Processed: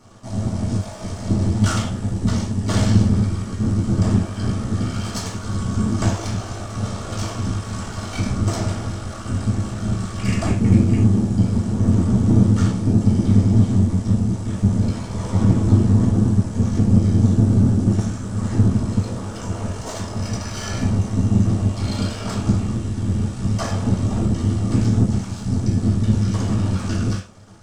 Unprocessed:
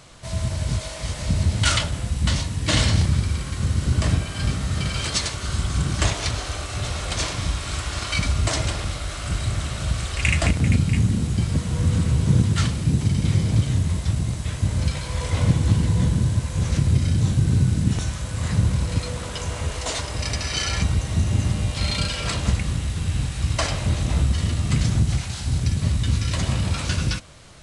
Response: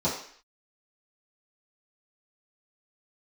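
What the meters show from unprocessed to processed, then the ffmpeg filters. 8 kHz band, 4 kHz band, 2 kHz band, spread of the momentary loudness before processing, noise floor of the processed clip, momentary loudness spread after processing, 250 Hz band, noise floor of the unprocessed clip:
-4.5 dB, -8.0 dB, -6.5 dB, 8 LU, -31 dBFS, 11 LU, +8.5 dB, -32 dBFS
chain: -filter_complex "[0:a]lowshelf=f=130:g=7,aeval=exprs='max(val(0),0)':c=same[s0];[1:a]atrim=start_sample=2205,atrim=end_sample=6615,asetrate=57330,aresample=44100[s1];[s0][s1]afir=irnorm=-1:irlink=0,volume=0.376"

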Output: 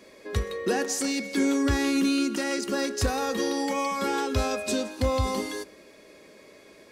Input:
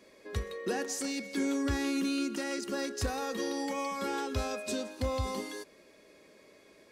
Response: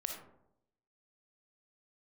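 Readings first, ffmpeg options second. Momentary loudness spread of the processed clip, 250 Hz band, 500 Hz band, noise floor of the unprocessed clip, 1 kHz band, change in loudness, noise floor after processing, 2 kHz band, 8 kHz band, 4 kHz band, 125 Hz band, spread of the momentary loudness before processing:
8 LU, +7.0 dB, +7.0 dB, -60 dBFS, +7.0 dB, +7.0 dB, -52 dBFS, +7.0 dB, +7.0 dB, +7.0 dB, +7.0 dB, 8 LU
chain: -filter_complex "[0:a]asplit=2[s0][s1];[1:a]atrim=start_sample=2205,adelay=19[s2];[s1][s2]afir=irnorm=-1:irlink=0,volume=0.112[s3];[s0][s3]amix=inputs=2:normalize=0,volume=2.24"

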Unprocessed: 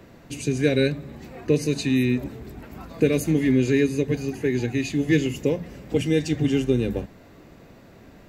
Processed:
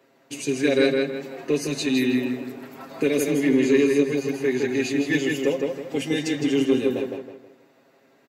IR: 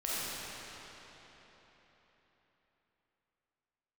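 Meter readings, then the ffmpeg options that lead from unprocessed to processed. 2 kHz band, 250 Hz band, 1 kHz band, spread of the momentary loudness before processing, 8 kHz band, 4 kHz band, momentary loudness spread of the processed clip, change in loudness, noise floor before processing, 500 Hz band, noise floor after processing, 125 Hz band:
+3.0 dB, +0.5 dB, +3.5 dB, 16 LU, +2.5 dB, +3.0 dB, 13 LU, +0.5 dB, -49 dBFS, +2.0 dB, -60 dBFS, -9.5 dB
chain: -filter_complex "[0:a]highpass=320,agate=range=0.316:threshold=0.00447:ratio=16:detection=peak,aecho=1:1:7.4:0.72,asoftclip=type=tanh:threshold=0.398,asplit=2[s0][s1];[s1]adelay=161,lowpass=f=3900:p=1,volume=0.708,asplit=2[s2][s3];[s3]adelay=161,lowpass=f=3900:p=1,volume=0.37,asplit=2[s4][s5];[s5]adelay=161,lowpass=f=3900:p=1,volume=0.37,asplit=2[s6][s7];[s7]adelay=161,lowpass=f=3900:p=1,volume=0.37,asplit=2[s8][s9];[s9]adelay=161,lowpass=f=3900:p=1,volume=0.37[s10];[s2][s4][s6][s8][s10]amix=inputs=5:normalize=0[s11];[s0][s11]amix=inputs=2:normalize=0"

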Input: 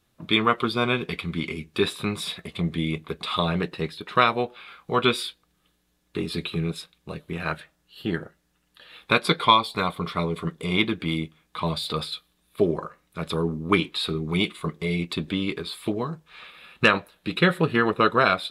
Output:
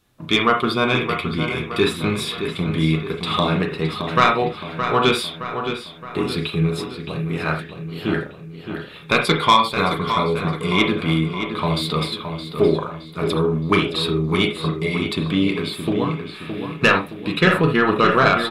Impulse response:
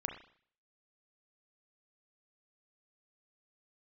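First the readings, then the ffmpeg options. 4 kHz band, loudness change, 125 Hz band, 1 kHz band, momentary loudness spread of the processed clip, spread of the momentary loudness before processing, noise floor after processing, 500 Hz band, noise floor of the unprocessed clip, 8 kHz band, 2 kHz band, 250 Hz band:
+4.0 dB, +5.0 dB, +6.5 dB, +5.0 dB, 11 LU, 13 LU, -38 dBFS, +6.0 dB, -70 dBFS, +5.5 dB, +5.0 dB, +5.5 dB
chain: -filter_complex "[0:a]acontrast=89,asplit=2[s0][s1];[s1]adelay=618,lowpass=f=4000:p=1,volume=0.398,asplit=2[s2][s3];[s3]adelay=618,lowpass=f=4000:p=1,volume=0.52,asplit=2[s4][s5];[s5]adelay=618,lowpass=f=4000:p=1,volume=0.52,asplit=2[s6][s7];[s7]adelay=618,lowpass=f=4000:p=1,volume=0.52,asplit=2[s8][s9];[s9]adelay=618,lowpass=f=4000:p=1,volume=0.52,asplit=2[s10][s11];[s11]adelay=618,lowpass=f=4000:p=1,volume=0.52[s12];[s0][s2][s4][s6][s8][s10][s12]amix=inputs=7:normalize=0[s13];[1:a]atrim=start_sample=2205,atrim=end_sample=3969[s14];[s13][s14]afir=irnorm=-1:irlink=0,volume=0.794"

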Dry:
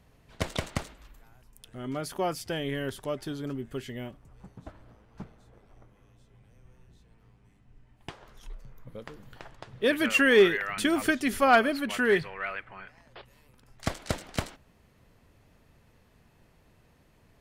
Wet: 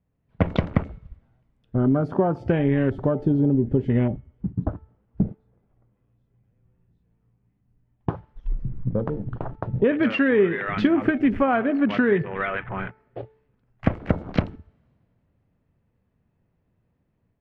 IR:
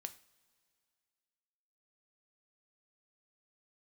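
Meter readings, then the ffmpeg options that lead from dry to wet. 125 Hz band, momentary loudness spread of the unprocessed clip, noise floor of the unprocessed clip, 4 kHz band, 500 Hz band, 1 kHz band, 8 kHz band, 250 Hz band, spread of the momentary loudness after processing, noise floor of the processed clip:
+14.5 dB, 23 LU, -62 dBFS, -6.5 dB, +4.0 dB, +1.0 dB, under -25 dB, +10.0 dB, 13 LU, -71 dBFS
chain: -filter_complex "[0:a]agate=range=0.251:threshold=0.00398:ratio=16:detection=peak,asplit=2[s0][s1];[s1]highpass=52[s2];[1:a]atrim=start_sample=2205[s3];[s2][s3]afir=irnorm=-1:irlink=0,volume=2.24[s4];[s0][s4]amix=inputs=2:normalize=0,acompressor=threshold=0.0316:ratio=4,afwtdn=0.01,lowshelf=f=400:g=11.5,dynaudnorm=f=190:g=3:m=1.88,lowpass=2500,bandreject=f=438.3:t=h:w=4,bandreject=f=876.6:t=h:w=4,bandreject=f=1314.9:t=h:w=4,bandreject=f=1753.2:t=h:w=4,bandreject=f=2191.5:t=h:w=4"

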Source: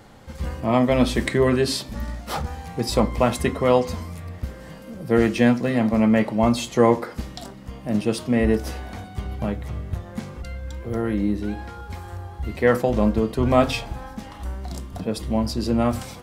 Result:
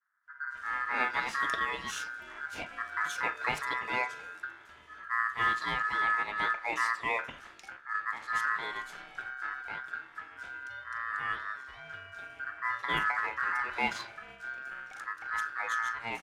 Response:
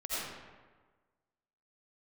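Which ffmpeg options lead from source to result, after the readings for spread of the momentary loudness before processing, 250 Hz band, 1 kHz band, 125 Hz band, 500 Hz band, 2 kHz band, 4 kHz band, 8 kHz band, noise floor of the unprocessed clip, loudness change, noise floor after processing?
16 LU, -29.0 dB, -4.0 dB, -28.0 dB, -24.0 dB, +2.5 dB, -9.0 dB, -11.5 dB, -41 dBFS, -10.5 dB, -54 dBFS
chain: -filter_complex "[0:a]agate=range=0.0224:threshold=0.0178:ratio=3:detection=peak,bandreject=f=50:t=h:w=6,bandreject=f=100:t=h:w=6,bandreject=f=150:t=h:w=6,bandreject=f=200:t=h:w=6,bandreject=f=250:t=h:w=6,acrossover=split=470|3400[s0][s1][s2];[s2]adelay=220[s3];[s1]adelay=260[s4];[s0][s4][s3]amix=inputs=3:normalize=0,aeval=exprs='val(0)*sin(2*PI*1500*n/s)':c=same,adynamicsmooth=sensitivity=4.5:basefreq=7900,volume=0.422"

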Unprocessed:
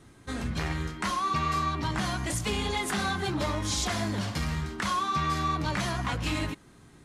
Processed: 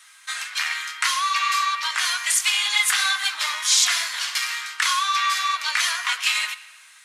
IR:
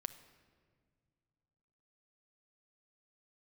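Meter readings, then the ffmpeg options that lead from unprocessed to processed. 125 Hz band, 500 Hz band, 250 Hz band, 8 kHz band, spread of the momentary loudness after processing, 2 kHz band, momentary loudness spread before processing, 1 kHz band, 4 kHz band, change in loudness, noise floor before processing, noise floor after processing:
under -40 dB, under -15 dB, under -40 dB, +14.5 dB, 7 LU, +12.0 dB, 5 LU, +4.5 dB, +13.5 dB, +9.0 dB, -55 dBFS, -50 dBFS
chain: -filter_complex "[0:a]highpass=f=1200:w=0.5412,highpass=f=1200:w=1.3066,equalizer=f=2400:w=1.3:g=3.5,asplit=2[s0][s1];[1:a]atrim=start_sample=2205,highshelf=f=2800:g=10[s2];[s1][s2]afir=irnorm=-1:irlink=0,volume=2.51[s3];[s0][s3]amix=inputs=2:normalize=0,volume=0.841"

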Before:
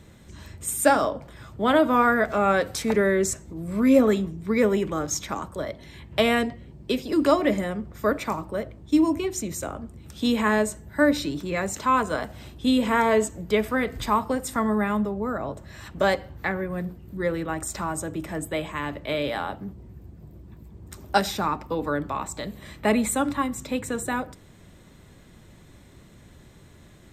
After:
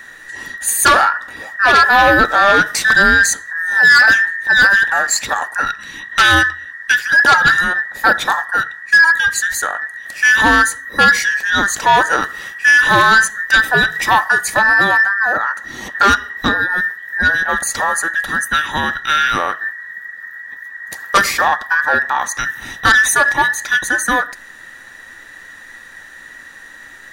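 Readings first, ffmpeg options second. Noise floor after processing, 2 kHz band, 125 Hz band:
-38 dBFS, +21.5 dB, +3.0 dB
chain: -af "afftfilt=real='real(if(between(b,1,1012),(2*floor((b-1)/92)+1)*92-b,b),0)':imag='imag(if(between(b,1,1012),(2*floor((b-1)/92)+1)*92-b,b),0)*if(between(b,1,1012),-1,1)':win_size=2048:overlap=0.75,aeval=exprs='0.562*(cos(1*acos(clip(val(0)/0.562,-1,1)))-cos(1*PI/2))+0.282*(cos(5*acos(clip(val(0)/0.562,-1,1)))-cos(5*PI/2))':c=same,volume=1.19"

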